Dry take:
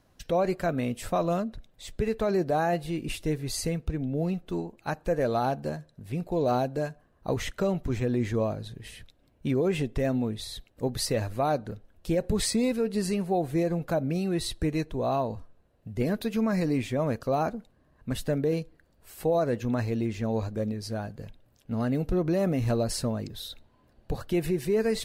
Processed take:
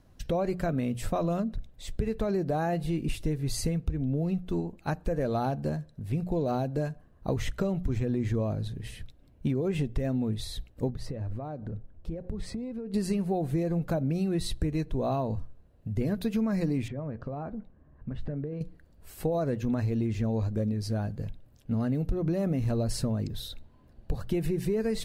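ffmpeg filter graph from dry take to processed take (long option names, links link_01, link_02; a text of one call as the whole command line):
ffmpeg -i in.wav -filter_complex "[0:a]asettb=1/sr,asplit=3[link_01][link_02][link_03];[link_01]atrim=end=10.904[link_04];[link_02]atrim=start=10.9:end=12.94,asetpts=PTS-STARTPTS,afade=type=in:duration=0.004:curve=qsin,afade=type=out:start_time=2.036:duration=0.004:curve=qsin,lowpass=frequency=1100:poles=1,acompressor=threshold=-36dB:ratio=8:attack=3.2:release=140:knee=1:detection=peak[link_05];[link_03]atrim=start=12.936[link_06];[link_04][link_05]acrossfade=duration=0.004:curve1=hsin:curve2=qsin[link_07];[link_07][link_06]acrossfade=duration=0.004:curve1=qsin:curve2=hsin,asettb=1/sr,asplit=3[link_08][link_09][link_10];[link_08]atrim=end=16.884[link_11];[link_09]atrim=start=16.88:end=18.61,asetpts=PTS-STARTPTS,afade=type=in:duration=0.004:curve=qsin,afade=type=out:start_time=1.726:duration=0.004:curve=qsin,lowpass=1900,acompressor=threshold=-37dB:ratio=4:attack=3.2:release=140:knee=1:detection=peak,asplit=2[link_12][link_13];[link_13]adelay=14,volume=-13.5dB[link_14];[link_12][link_14]amix=inputs=2:normalize=0,atrim=end_sample=76293[link_15];[link_10]atrim=start=18.606[link_16];[link_11][link_15]acrossfade=duration=0.004:curve1=hsin:curve2=qsin[link_17];[link_17][link_16]acrossfade=duration=0.004:curve1=qsin:curve2=hsin,lowshelf=frequency=250:gain=11,bandreject=frequency=60:width_type=h:width=6,bandreject=frequency=120:width_type=h:width=6,bandreject=frequency=180:width_type=h:width=6,acompressor=threshold=-23dB:ratio=6,volume=-1.5dB" out.wav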